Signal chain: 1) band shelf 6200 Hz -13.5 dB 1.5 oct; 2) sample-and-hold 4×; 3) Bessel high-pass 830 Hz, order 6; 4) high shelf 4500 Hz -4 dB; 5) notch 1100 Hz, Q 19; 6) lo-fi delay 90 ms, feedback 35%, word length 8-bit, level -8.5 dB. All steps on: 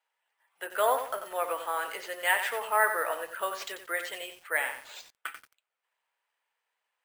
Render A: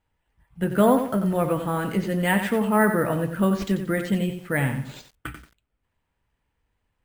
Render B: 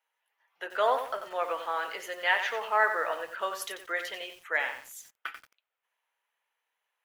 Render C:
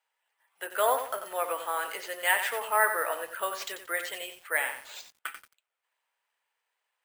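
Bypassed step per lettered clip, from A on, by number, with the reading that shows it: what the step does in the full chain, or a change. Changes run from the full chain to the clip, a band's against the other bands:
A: 3, 250 Hz band +30.5 dB; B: 2, distortion -15 dB; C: 4, 8 kHz band +3.0 dB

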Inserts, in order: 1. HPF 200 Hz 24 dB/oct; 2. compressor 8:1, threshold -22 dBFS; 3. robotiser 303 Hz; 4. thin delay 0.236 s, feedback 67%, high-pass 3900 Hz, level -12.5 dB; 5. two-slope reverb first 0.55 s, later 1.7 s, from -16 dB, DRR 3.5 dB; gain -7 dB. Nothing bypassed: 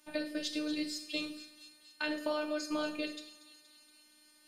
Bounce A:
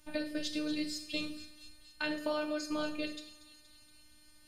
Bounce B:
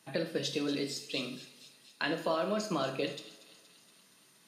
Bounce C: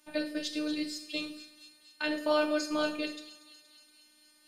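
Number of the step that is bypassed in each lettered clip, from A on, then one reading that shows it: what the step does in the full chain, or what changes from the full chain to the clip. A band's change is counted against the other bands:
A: 1, 125 Hz band +7.0 dB; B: 3, 125 Hz band +17.0 dB; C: 2, mean gain reduction 2.5 dB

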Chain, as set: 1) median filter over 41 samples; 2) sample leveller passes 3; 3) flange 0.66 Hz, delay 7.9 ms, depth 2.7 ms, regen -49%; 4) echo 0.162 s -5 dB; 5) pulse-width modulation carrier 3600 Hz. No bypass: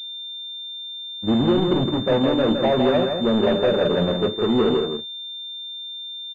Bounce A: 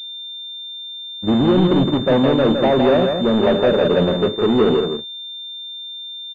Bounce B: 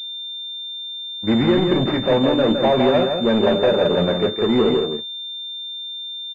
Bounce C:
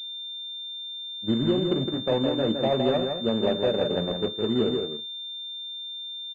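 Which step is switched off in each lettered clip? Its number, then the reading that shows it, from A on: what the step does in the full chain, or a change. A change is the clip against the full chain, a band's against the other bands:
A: 3, loudness change +5.5 LU; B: 1, 125 Hz band -1.5 dB; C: 2, loudness change -5.0 LU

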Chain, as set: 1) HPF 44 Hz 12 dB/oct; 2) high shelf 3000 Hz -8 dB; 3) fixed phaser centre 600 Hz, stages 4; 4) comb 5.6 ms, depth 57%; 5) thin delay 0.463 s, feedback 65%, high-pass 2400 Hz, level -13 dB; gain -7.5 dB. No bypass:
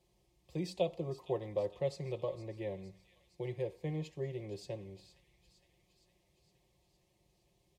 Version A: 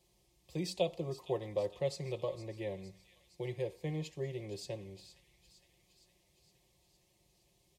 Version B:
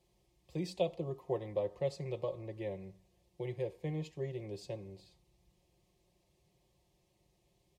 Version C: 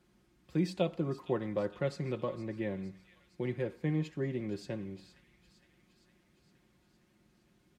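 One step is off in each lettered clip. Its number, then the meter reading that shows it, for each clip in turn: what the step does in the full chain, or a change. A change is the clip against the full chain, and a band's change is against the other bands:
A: 2, 8 kHz band +6.5 dB; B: 5, echo-to-direct -17.0 dB to none; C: 3, 250 Hz band +5.0 dB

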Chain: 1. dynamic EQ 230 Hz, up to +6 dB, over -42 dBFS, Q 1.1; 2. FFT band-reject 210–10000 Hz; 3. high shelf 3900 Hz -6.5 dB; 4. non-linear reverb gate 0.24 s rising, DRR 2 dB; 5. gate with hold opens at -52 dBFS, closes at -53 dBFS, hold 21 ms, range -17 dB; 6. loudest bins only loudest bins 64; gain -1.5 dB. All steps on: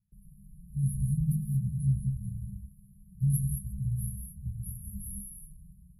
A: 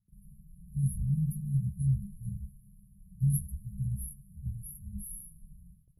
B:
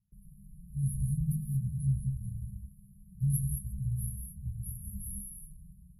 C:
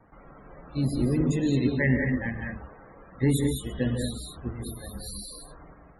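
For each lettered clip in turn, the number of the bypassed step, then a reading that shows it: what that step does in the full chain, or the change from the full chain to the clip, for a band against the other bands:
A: 4, momentary loudness spread change -1 LU; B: 1, momentary loudness spread change +2 LU; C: 2, loudness change +4.5 LU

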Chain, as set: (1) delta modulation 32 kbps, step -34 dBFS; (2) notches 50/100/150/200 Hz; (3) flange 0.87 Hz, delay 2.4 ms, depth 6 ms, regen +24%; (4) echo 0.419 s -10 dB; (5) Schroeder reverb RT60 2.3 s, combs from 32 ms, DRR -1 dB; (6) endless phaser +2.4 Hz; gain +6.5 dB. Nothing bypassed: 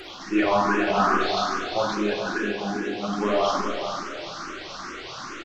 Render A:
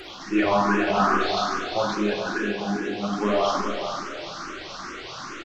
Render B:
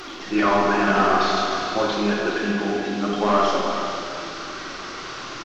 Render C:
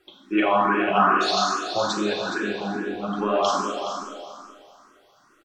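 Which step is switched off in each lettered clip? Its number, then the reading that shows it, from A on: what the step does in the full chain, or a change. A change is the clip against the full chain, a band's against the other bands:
2, 125 Hz band +2.5 dB; 6, loudness change +3.0 LU; 1, 4 kHz band +2.5 dB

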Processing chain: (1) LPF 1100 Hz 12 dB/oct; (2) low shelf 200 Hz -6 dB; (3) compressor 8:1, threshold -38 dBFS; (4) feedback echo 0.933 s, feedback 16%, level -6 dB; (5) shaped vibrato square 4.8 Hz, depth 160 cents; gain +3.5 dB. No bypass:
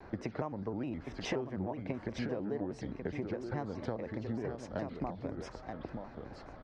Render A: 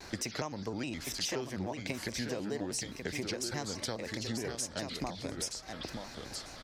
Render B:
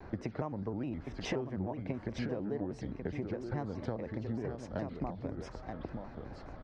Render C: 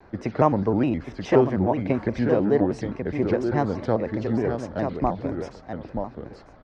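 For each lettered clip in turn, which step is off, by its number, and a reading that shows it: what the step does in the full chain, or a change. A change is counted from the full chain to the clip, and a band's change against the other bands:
1, 8 kHz band +20.5 dB; 2, 125 Hz band +3.0 dB; 3, mean gain reduction 10.0 dB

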